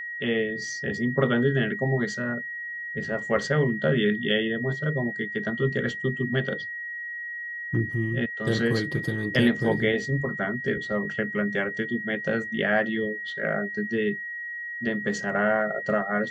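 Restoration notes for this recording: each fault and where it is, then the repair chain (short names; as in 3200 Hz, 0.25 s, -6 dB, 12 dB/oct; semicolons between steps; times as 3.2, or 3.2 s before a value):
tone 1900 Hz -32 dBFS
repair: notch 1900 Hz, Q 30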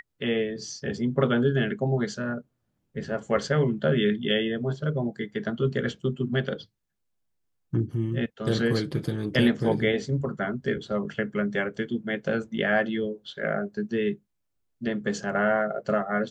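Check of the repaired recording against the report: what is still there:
none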